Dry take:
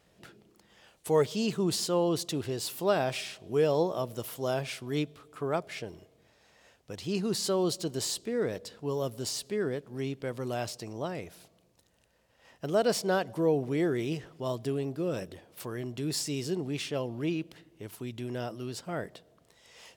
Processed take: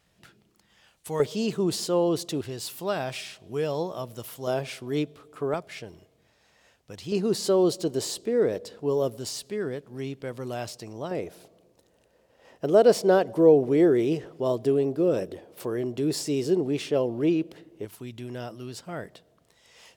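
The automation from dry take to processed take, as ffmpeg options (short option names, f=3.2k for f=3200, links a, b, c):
-af "asetnsamples=n=441:p=0,asendcmd='1.2 equalizer g 4.5;2.41 equalizer g -3;4.47 equalizer g 5;5.54 equalizer g -2;7.12 equalizer g 8;9.17 equalizer g 0.5;11.11 equalizer g 10.5;17.85 equalizer g -1',equalizer=f=430:t=o:w=1.8:g=-7"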